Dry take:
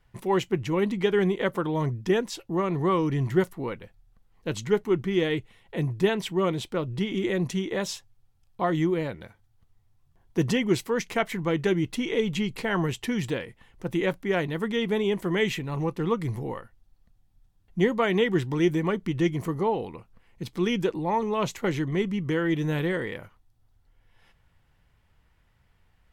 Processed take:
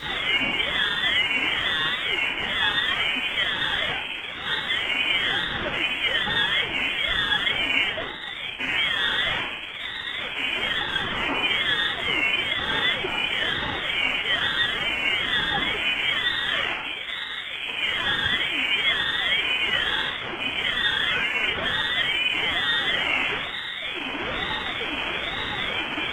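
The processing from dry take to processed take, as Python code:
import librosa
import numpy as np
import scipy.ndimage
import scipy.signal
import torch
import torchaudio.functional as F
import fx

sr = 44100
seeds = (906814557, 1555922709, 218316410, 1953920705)

p1 = np.sign(x) * np.sqrt(np.mean(np.square(x)))
p2 = fx.notch_comb(p1, sr, f0_hz=1400.0)
p3 = fx.freq_invert(p2, sr, carrier_hz=2900)
p4 = np.clip(p3, -10.0 ** (-33.5 / 20.0), 10.0 ** (-33.5 / 20.0))
p5 = p3 + (p4 * librosa.db_to_amplitude(-10.0))
p6 = fx.room_shoebox(p5, sr, seeds[0], volume_m3=260.0, walls='mixed', distance_m=4.9)
p7 = fx.ring_lfo(p6, sr, carrier_hz=570.0, swing_pct=55, hz=1.1)
y = p7 * librosa.db_to_amplitude(-6.5)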